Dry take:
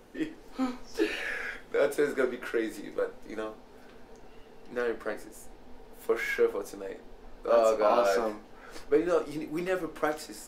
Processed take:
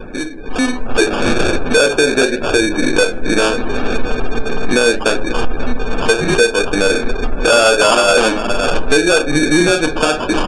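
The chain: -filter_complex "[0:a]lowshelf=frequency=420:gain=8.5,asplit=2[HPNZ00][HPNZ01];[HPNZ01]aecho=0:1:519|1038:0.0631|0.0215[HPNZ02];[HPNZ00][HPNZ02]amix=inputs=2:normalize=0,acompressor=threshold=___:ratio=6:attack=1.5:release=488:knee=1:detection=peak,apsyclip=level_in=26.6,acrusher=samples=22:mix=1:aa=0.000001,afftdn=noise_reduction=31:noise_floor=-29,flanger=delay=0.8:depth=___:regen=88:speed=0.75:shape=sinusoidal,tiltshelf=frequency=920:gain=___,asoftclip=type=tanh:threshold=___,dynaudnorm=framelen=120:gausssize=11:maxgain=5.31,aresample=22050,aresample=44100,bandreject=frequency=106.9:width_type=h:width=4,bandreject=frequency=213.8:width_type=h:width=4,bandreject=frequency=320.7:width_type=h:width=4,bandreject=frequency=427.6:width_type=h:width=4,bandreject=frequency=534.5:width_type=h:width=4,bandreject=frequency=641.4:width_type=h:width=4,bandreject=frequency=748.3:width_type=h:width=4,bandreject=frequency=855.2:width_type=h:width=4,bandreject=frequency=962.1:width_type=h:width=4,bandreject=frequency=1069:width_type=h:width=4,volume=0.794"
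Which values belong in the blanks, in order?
0.0178, 4.9, -3.5, 0.316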